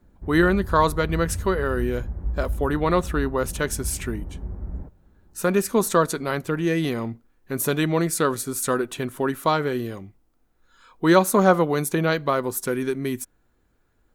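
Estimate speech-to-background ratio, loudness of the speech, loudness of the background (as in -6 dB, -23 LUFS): 10.5 dB, -23.0 LUFS, -33.5 LUFS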